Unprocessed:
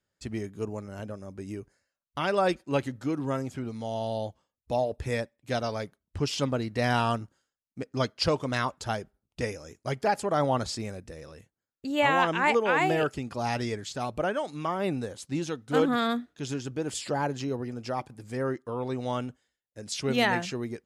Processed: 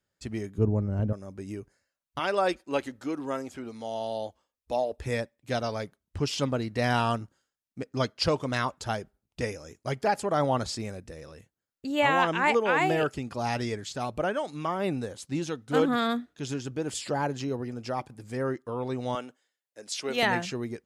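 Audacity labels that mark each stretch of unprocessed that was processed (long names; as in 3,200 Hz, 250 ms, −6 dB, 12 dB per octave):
0.580000	1.130000	spectral tilt −4.5 dB per octave
2.190000	5.050000	parametric band 130 Hz −14 dB 1.1 octaves
19.150000	20.230000	high-pass filter 380 Hz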